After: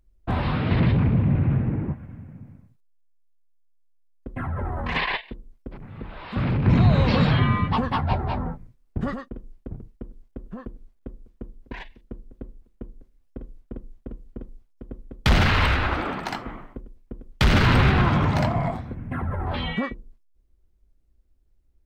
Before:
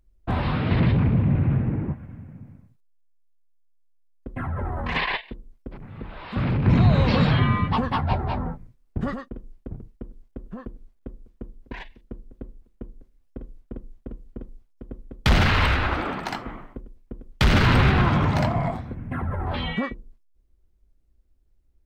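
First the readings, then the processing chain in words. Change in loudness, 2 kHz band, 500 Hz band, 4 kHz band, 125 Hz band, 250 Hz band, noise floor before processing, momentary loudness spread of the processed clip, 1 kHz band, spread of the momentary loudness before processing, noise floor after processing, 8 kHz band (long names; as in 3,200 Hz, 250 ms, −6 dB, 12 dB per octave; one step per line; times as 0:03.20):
0.0 dB, 0.0 dB, 0.0 dB, 0.0 dB, 0.0 dB, 0.0 dB, −62 dBFS, 23 LU, 0.0 dB, 23 LU, −62 dBFS, can't be measured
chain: floating-point word with a short mantissa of 8 bits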